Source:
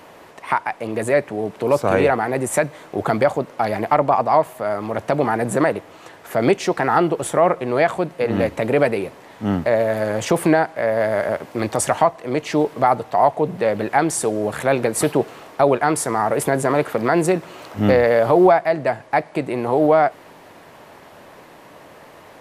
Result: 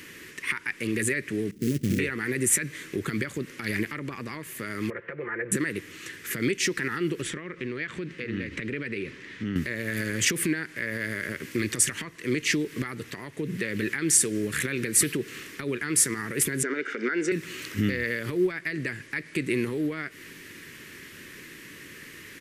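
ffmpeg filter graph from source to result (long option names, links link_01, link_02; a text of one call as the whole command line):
ffmpeg -i in.wav -filter_complex "[0:a]asettb=1/sr,asplit=3[link_01][link_02][link_03];[link_01]atrim=end=1.514[link_04];[link_02]atrim=start=1.51:end=1.99,asetpts=PTS-STARTPTS,afade=type=in:duration=0.004:curve=qsin,afade=type=out:start_time=0.476:duration=0.004:curve=qsin,lowpass=frequency=230:width_type=q:width=1.5,acrusher=bits=5:mode=log:mix=0:aa=0.000001[link_05];[link_03]atrim=start=1.986[link_06];[link_04][link_05]acrossfade=duration=0.004:curve1=hsin:curve2=qsin[link_07];[link_07][link_06]acrossfade=duration=0.004:curve1=qsin:curve2=hsin,asettb=1/sr,asplit=3[link_08][link_09][link_10];[link_08]atrim=end=4.904[link_11];[link_09]atrim=start=4.9:end=5.52,asetpts=PTS-STARTPTS,afade=type=in:duration=0.004:curve=qsin,afade=type=out:start_time=0.616:duration=0.004:curve=qsin,lowpass=frequency=2000:width=0.5412,lowpass=frequency=2000:width=1.3066,lowshelf=frequency=360:width_type=q:width=3:gain=-9,aecho=1:1:5.8:0.55,atrim=end_sample=27342[link_12];[link_10]atrim=start=5.516[link_13];[link_11][link_12]acrossfade=duration=0.004:curve1=hsin:curve2=qsin[link_14];[link_14][link_13]acrossfade=duration=0.004:curve1=qsin:curve2=hsin,asettb=1/sr,asplit=3[link_15][link_16][link_17];[link_15]atrim=end=7.224[link_18];[link_16]atrim=start=7.22:end=9.56,asetpts=PTS-STARTPTS,afade=type=in:duration=0.004:curve=qsin,afade=type=out:start_time=2.336:duration=0.004:curve=qsin,lowpass=4300,acompressor=threshold=-27dB:ratio=5:attack=3.2:release=140:knee=1:detection=peak[link_19];[link_17]atrim=start=9.556[link_20];[link_18][link_19]acrossfade=duration=0.004:curve1=hsin:curve2=qsin[link_21];[link_21][link_20]acrossfade=duration=0.004:curve1=qsin:curve2=hsin,asettb=1/sr,asplit=3[link_22][link_23][link_24];[link_22]atrim=end=16.634[link_25];[link_23]atrim=start=16.63:end=17.32,asetpts=PTS-STARTPTS,afade=type=in:duration=0.004:curve=qsin,afade=type=out:start_time=0.686:duration=0.004:curve=qsin,highpass=frequency=250:width=0.5412,highpass=frequency=250:width=1.3066,equalizer=frequency=270:width_type=q:width=4:gain=4,equalizer=frequency=410:width_type=q:width=4:gain=10,equalizer=frequency=1500:width_type=q:width=4:gain=7,equalizer=frequency=2900:width_type=q:width=4:gain=-3,equalizer=frequency=4300:width_type=q:width=4:gain=-8,lowpass=frequency=5700:width=0.5412,lowpass=frequency=5700:width=1.3066,aecho=1:1:1.4:0.43,atrim=end_sample=30429[link_26];[link_24]atrim=start=17.316[link_27];[link_25][link_26]acrossfade=duration=0.004:curve1=hsin:curve2=qsin[link_28];[link_28][link_27]acrossfade=duration=0.004:curve1=qsin:curve2=hsin,acompressor=threshold=-19dB:ratio=4,alimiter=limit=-15.5dB:level=0:latency=1:release=96,firequalizer=gain_entry='entry(370,0);entry(710,-30);entry(1100,-11);entry(1800,7);entry(3900,3);entry(5900,7)':delay=0.05:min_phase=1" out.wav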